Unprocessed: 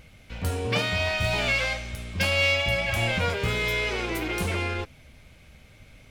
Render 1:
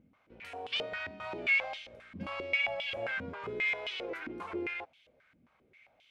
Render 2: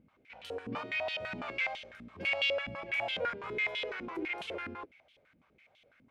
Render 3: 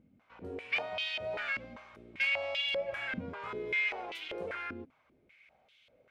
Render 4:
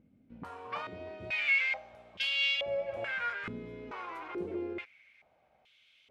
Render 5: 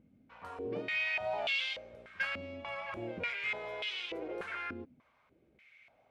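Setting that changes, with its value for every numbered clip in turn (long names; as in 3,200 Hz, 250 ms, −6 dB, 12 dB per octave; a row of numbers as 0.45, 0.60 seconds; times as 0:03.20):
band-pass on a step sequencer, speed: 7.5, 12, 5.1, 2.3, 3.4 Hertz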